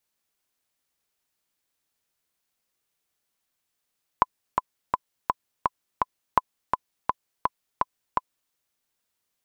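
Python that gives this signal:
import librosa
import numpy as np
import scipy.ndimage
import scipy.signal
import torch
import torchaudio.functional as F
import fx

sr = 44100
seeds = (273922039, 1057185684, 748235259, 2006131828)

y = fx.click_track(sr, bpm=167, beats=6, bars=2, hz=1010.0, accent_db=4.5, level_db=-3.5)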